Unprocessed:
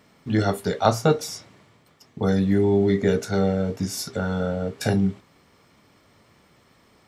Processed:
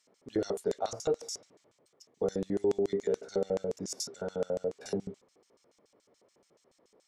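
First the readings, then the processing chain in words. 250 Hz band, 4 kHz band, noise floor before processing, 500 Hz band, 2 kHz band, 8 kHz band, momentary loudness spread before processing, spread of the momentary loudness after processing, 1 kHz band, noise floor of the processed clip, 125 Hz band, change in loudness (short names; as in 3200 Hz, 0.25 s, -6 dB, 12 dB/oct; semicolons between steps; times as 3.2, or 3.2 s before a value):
-15.0 dB, -10.0 dB, -59 dBFS, -7.5 dB, -19.0 dB, -6.5 dB, 8 LU, 7 LU, -15.0 dB, -73 dBFS, -20.5 dB, -10.5 dB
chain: LFO band-pass square 7 Hz 480–6700 Hz; limiter -20.5 dBFS, peak gain reduction 8 dB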